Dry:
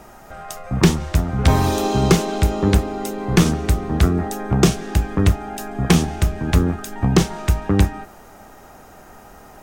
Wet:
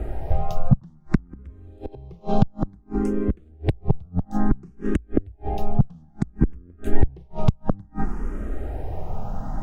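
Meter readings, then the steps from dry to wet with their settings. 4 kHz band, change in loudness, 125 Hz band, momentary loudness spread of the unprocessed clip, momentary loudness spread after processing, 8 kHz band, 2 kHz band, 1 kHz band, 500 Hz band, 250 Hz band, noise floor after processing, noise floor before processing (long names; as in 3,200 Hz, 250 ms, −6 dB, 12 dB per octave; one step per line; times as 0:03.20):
below −20 dB, −8.0 dB, −6.5 dB, 9 LU, 10 LU, below −25 dB, −15.0 dB, −8.0 dB, −8.0 dB, −6.0 dB, −51 dBFS, −44 dBFS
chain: spectral tilt −4.5 dB per octave
downward compressor 6 to 1, threshold 0 dBFS, peak gain reduction 8.5 dB
gate with flip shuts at −2 dBFS, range −38 dB
speech leveller within 5 dB 0.5 s
frequency shifter mixed with the dry sound +0.58 Hz
level +1 dB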